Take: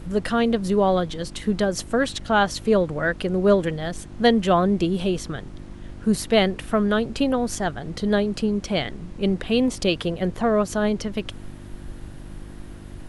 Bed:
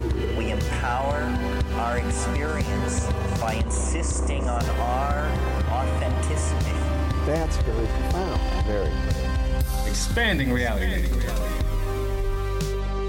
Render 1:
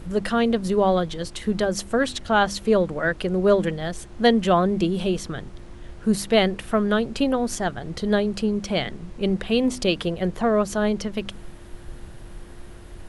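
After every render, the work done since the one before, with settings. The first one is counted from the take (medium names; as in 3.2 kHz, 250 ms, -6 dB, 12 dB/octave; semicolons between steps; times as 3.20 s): de-hum 50 Hz, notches 6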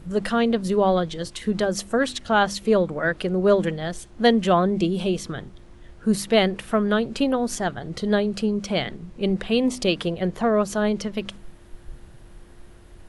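noise print and reduce 6 dB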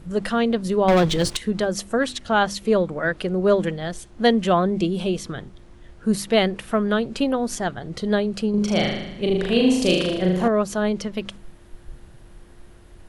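0.88–1.37 s: waveshaping leveller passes 3; 8.50–10.48 s: flutter echo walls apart 6.6 m, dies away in 0.88 s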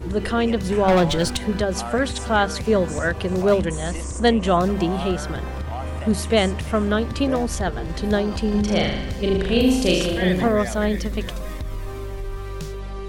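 add bed -5 dB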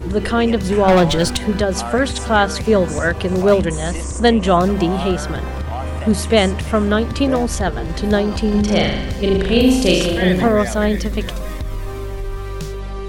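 trim +4.5 dB; peak limiter -1 dBFS, peak gain reduction 1 dB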